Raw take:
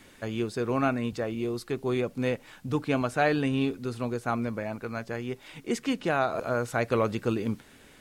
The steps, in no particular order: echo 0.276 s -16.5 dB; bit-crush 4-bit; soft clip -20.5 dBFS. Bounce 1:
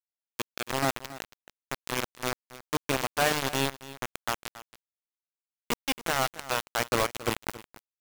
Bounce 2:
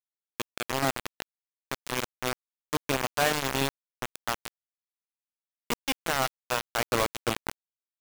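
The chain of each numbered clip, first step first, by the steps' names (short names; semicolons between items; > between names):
soft clip > bit-crush > echo; echo > soft clip > bit-crush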